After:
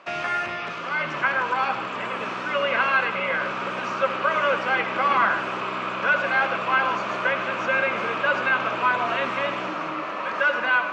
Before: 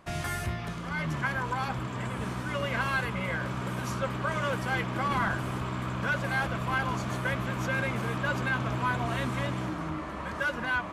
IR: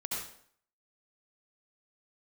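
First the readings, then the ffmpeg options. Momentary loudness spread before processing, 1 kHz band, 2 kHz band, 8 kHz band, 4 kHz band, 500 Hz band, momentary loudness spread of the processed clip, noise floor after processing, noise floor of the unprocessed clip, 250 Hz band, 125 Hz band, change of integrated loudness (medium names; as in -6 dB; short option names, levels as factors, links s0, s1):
6 LU, +9.0 dB, +9.0 dB, no reading, +7.0 dB, +8.5 dB, 8 LU, -31 dBFS, -37 dBFS, -2.0 dB, -11.5 dB, +7.5 dB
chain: -filter_complex "[0:a]acrossover=split=2800[s0][s1];[s1]acompressor=threshold=0.00355:ratio=4:attack=1:release=60[s2];[s0][s2]amix=inputs=2:normalize=0,highpass=390,equalizer=f=550:t=q:w=4:g=4,equalizer=f=1300:t=q:w=4:g=5,equalizer=f=2600:t=q:w=4:g=9,lowpass=f=6000:w=0.5412,lowpass=f=6000:w=1.3066,asplit=2[s3][s4];[1:a]atrim=start_sample=2205[s5];[s4][s5]afir=irnorm=-1:irlink=0,volume=0.335[s6];[s3][s6]amix=inputs=2:normalize=0,volume=1.68"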